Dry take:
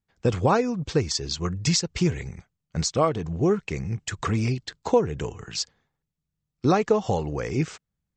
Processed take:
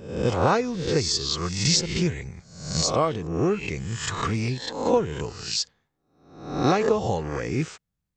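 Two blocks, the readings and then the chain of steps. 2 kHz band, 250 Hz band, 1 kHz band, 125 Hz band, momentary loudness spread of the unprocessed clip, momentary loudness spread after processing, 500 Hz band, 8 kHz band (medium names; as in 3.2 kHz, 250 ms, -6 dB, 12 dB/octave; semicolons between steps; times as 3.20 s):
+2.5 dB, -0.5 dB, +1.0 dB, -1.0 dB, 9 LU, 11 LU, 0.0 dB, +3.0 dB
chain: reverse spectral sustain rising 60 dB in 0.68 s; dynamic bell 3.8 kHz, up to +4 dB, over -37 dBFS, Q 1.2; trim -2.5 dB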